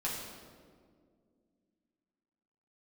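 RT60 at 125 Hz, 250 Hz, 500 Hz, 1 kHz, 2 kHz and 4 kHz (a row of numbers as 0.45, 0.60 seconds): 2.5, 3.2, 2.4, 1.6, 1.3, 1.1 seconds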